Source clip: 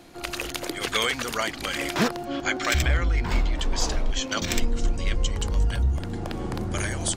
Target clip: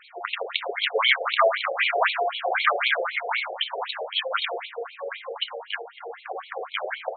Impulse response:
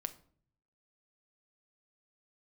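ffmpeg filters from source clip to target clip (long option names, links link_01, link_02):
-filter_complex "[0:a]asettb=1/sr,asplit=3[link_01][link_02][link_03];[link_01]atrim=end=1.084[link_04];[link_02]atrim=start=1.08:end=3.56,asetpts=PTS-STARTPTS,afade=type=in:duration=0.004:curve=qsin,afade=type=out:start_time=2.476:duration=0.004:curve=qsin,aecho=1:1:30|64.5|104.2|149.8|202.3:0.631|0.398|0.251|0.158|0.1,atrim=end_sample=109368[link_05];[link_03]atrim=start=3.556[link_06];[link_04][link_05]acrossfade=duration=0.004:curve1=hsin:curve2=qsin[link_07];[link_07][link_06]acrossfade=duration=0.004:curve1=qsin:curve2=hsin[link_08];[1:a]atrim=start_sample=2205,afade=type=out:start_time=0.23:duration=0.01,atrim=end_sample=10584,asetrate=29106,aresample=44100[link_09];[link_08][link_09]afir=irnorm=-1:irlink=0,afftfilt=real='re*between(b*sr/1024,540*pow(3100/540,0.5+0.5*sin(2*PI*3.9*pts/sr))/1.41,540*pow(3100/540,0.5+0.5*sin(2*PI*3.9*pts/sr))*1.41)':imag='im*between(b*sr/1024,540*pow(3100/540,0.5+0.5*sin(2*PI*3.9*pts/sr))/1.41,540*pow(3100/540,0.5+0.5*sin(2*PI*3.9*pts/sr))*1.41)':win_size=1024:overlap=0.75,volume=8.5dB"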